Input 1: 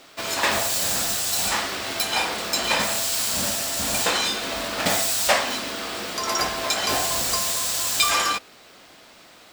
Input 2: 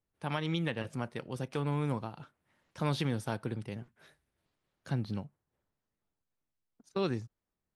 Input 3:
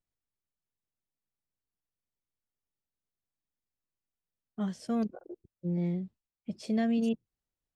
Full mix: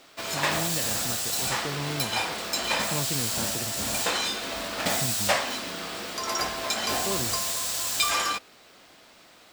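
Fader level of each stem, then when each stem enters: -4.5, -1.0, -18.5 dB; 0.00, 0.10, 0.00 s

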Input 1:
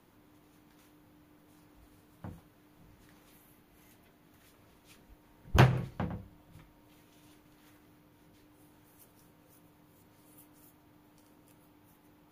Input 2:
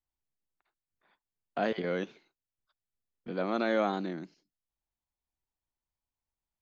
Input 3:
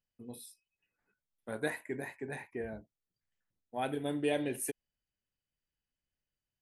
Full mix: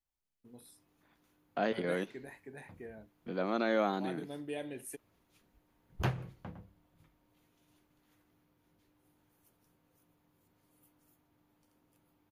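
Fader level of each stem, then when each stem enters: -11.0, -2.0, -8.5 dB; 0.45, 0.00, 0.25 s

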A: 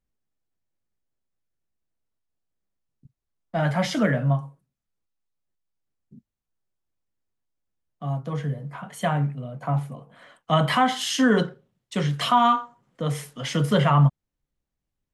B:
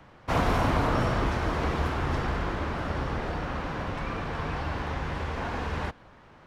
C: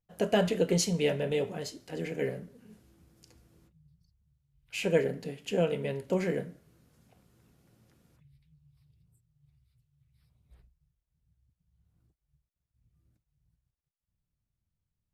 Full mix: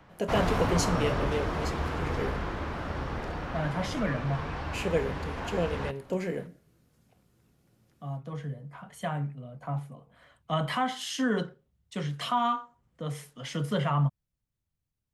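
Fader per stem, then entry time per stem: -8.5, -3.5, -2.0 dB; 0.00, 0.00, 0.00 s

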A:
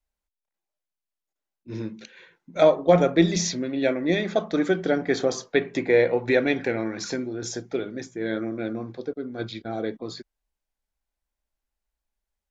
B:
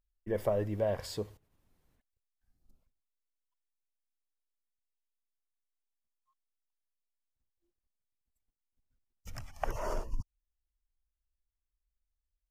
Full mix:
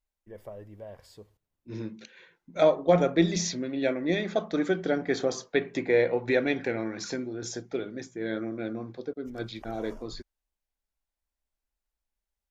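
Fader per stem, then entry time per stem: -4.0, -12.5 dB; 0.00, 0.00 s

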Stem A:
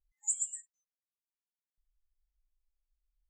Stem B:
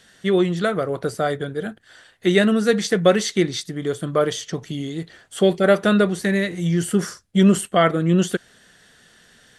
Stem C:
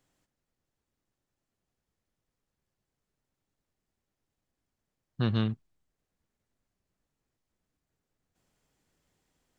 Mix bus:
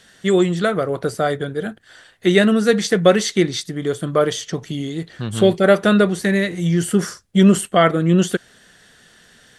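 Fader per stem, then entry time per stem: -7.0, +2.5, +1.5 dB; 0.00, 0.00, 0.00 s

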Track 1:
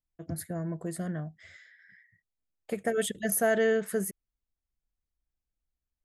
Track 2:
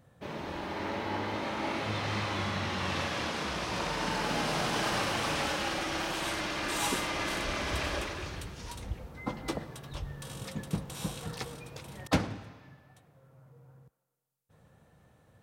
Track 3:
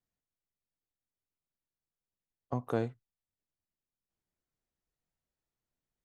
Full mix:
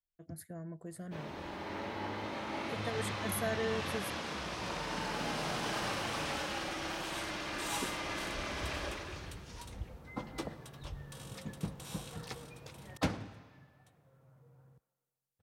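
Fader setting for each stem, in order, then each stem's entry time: -10.5 dB, -5.5 dB, off; 0.00 s, 0.90 s, off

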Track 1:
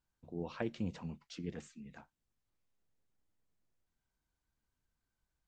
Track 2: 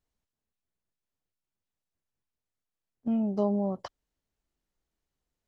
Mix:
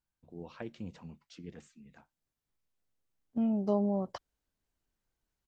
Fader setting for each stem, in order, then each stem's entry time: -4.5, -2.0 dB; 0.00, 0.30 s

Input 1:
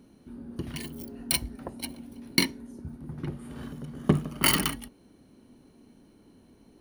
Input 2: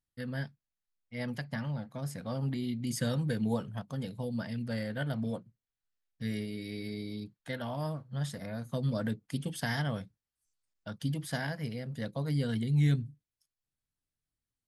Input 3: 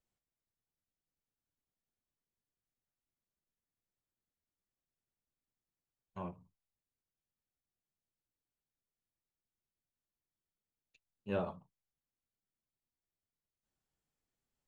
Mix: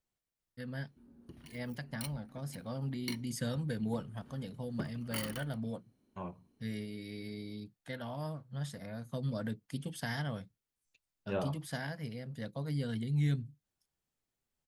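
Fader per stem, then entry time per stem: -17.5, -4.5, +0.5 dB; 0.70, 0.40, 0.00 s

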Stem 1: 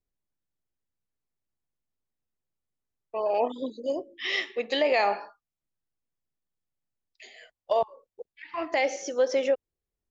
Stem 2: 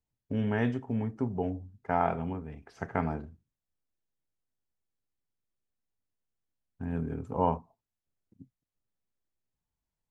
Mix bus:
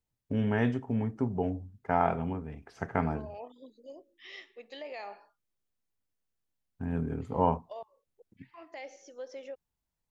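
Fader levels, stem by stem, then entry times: -18.5, +1.0 dB; 0.00, 0.00 s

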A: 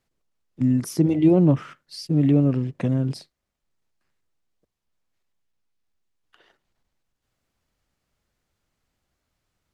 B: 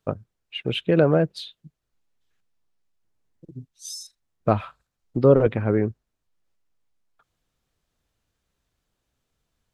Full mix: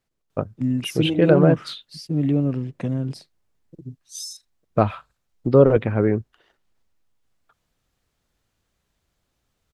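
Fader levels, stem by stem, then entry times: -2.5, +2.0 dB; 0.00, 0.30 s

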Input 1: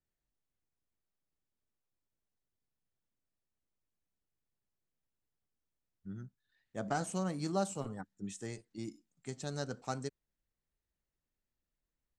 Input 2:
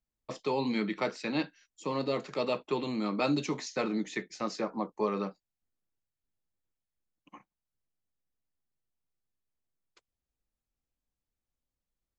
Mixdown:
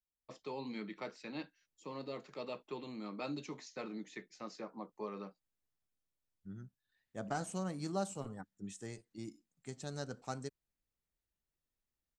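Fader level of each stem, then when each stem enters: -3.5, -12.5 dB; 0.40, 0.00 s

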